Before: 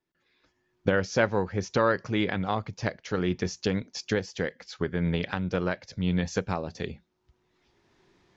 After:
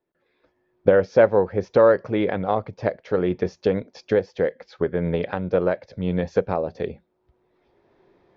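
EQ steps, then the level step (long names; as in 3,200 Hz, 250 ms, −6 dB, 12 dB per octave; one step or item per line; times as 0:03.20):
high-frequency loss of the air 210 metres
parametric band 540 Hz +12 dB 1.3 octaves
notch filter 2,900 Hz, Q 18
0.0 dB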